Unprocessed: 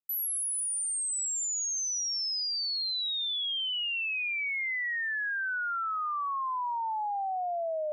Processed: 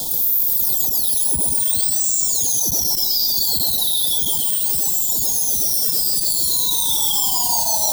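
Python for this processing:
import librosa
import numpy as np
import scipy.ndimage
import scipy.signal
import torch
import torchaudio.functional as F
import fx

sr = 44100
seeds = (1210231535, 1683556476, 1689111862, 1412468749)

p1 = np.sign(x) * np.sqrt(np.mean(np.square(x)))
p2 = fx.rider(p1, sr, range_db=10, speed_s=0.5)
p3 = p1 + F.gain(torch.from_numpy(p2), 0.0).numpy()
p4 = (np.kron(p3[::2], np.eye(2)[0]) * 2)[:len(p3)]
p5 = fx.high_shelf(p4, sr, hz=3800.0, db=7.0)
p6 = p5 + 10.0 ** (-10.0 / 20.0) * np.pad(p5, (int(111 * sr / 1000.0), 0))[:len(p5)]
p7 = fx.formant_shift(p6, sr, semitones=5)
p8 = scipy.signal.sosfilt(scipy.signal.cheby1(5, 1.0, [970.0, 3300.0], 'bandstop', fs=sr, output='sos'), p7)
p9 = fx.low_shelf(p8, sr, hz=480.0, db=8.5)
p10 = p9 + fx.echo_single(p9, sr, ms=130, db=-7.0, dry=0)
p11 = fx.transformer_sat(p10, sr, knee_hz=1000.0)
y = F.gain(torch.from_numpy(p11), -1.0).numpy()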